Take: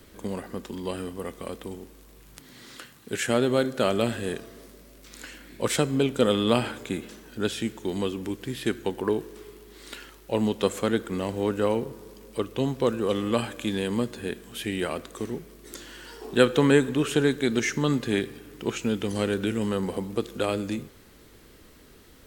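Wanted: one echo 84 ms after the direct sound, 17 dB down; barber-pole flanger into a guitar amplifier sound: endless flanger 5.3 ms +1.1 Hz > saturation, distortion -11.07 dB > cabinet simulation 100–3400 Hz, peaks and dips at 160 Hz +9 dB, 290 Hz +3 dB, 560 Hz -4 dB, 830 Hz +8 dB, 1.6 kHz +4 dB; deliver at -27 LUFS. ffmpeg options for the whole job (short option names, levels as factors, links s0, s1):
-filter_complex "[0:a]aecho=1:1:84:0.141,asplit=2[s0][s1];[s1]adelay=5.3,afreqshift=1.1[s2];[s0][s2]amix=inputs=2:normalize=1,asoftclip=threshold=0.0944,highpass=100,equalizer=f=160:t=q:w=4:g=9,equalizer=f=290:t=q:w=4:g=3,equalizer=f=560:t=q:w=4:g=-4,equalizer=f=830:t=q:w=4:g=8,equalizer=f=1600:t=q:w=4:g=4,lowpass=f=3400:w=0.5412,lowpass=f=3400:w=1.3066,volume=1.68"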